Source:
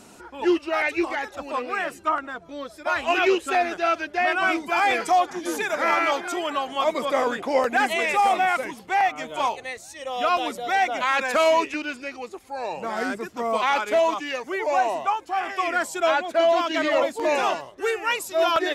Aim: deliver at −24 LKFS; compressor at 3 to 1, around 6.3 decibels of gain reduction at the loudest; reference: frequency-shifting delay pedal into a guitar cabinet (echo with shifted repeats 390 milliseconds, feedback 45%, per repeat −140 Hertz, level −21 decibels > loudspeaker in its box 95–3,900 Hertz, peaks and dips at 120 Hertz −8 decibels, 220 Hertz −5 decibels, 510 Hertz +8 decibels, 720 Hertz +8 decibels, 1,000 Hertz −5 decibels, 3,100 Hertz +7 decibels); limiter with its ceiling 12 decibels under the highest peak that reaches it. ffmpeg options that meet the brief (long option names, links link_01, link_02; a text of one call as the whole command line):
ffmpeg -i in.wav -filter_complex "[0:a]acompressor=threshold=-24dB:ratio=3,alimiter=level_in=1.5dB:limit=-24dB:level=0:latency=1,volume=-1.5dB,asplit=4[link_01][link_02][link_03][link_04];[link_02]adelay=390,afreqshift=-140,volume=-21dB[link_05];[link_03]adelay=780,afreqshift=-280,volume=-27.9dB[link_06];[link_04]adelay=1170,afreqshift=-420,volume=-34.9dB[link_07];[link_01][link_05][link_06][link_07]amix=inputs=4:normalize=0,highpass=95,equalizer=frequency=120:width_type=q:width=4:gain=-8,equalizer=frequency=220:width_type=q:width=4:gain=-5,equalizer=frequency=510:width_type=q:width=4:gain=8,equalizer=frequency=720:width_type=q:width=4:gain=8,equalizer=frequency=1000:width_type=q:width=4:gain=-5,equalizer=frequency=3100:width_type=q:width=4:gain=7,lowpass=frequency=3900:width=0.5412,lowpass=frequency=3900:width=1.3066,volume=6dB" out.wav